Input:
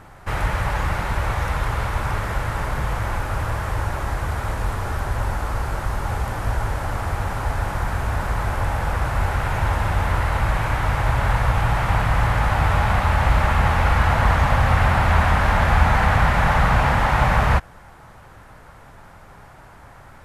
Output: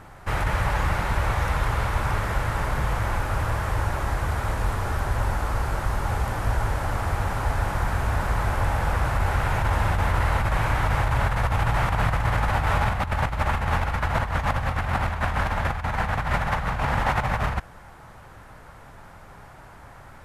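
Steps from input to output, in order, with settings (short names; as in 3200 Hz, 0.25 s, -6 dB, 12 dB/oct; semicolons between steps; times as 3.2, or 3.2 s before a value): 12.65–13.09 bell 87 Hz -6 dB -> +5.5 dB 2.1 oct; negative-ratio compressor -19 dBFS, ratio -0.5; gain -2.5 dB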